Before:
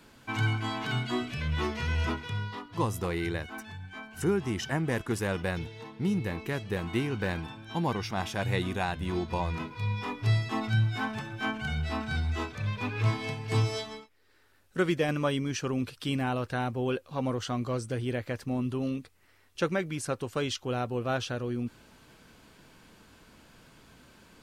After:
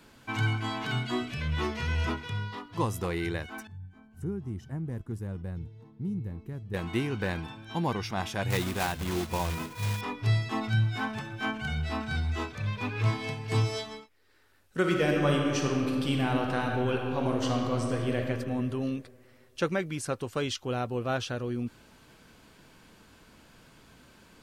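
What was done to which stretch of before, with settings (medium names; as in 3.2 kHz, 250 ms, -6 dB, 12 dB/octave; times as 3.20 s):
3.67–6.74 s: FFT filter 100 Hz 0 dB, 210 Hz -5 dB, 620 Hz -15 dB, 1.3 kHz -18 dB, 2.6 kHz -24 dB, 5.8 kHz -21 dB, 11 kHz -16 dB
8.50–10.02 s: block-companded coder 3-bit
14.79–18.17 s: reverb throw, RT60 2.3 s, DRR 0 dB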